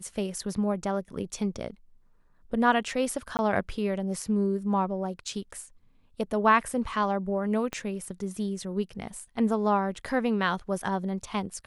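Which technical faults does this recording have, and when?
3.37–3.39 gap 19 ms
7.73 pop -17 dBFS

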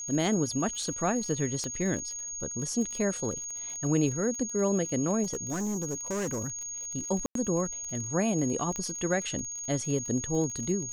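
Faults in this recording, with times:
crackle 50/s -36 dBFS
tone 6600 Hz -35 dBFS
1.64 pop -22 dBFS
5.23–6.59 clipped -28 dBFS
7.26–7.35 gap 93 ms
8.76 pop -20 dBFS

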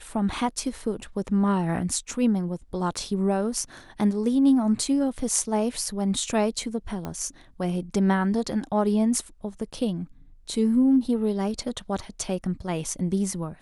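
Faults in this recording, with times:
7.05 pop -19 dBFS

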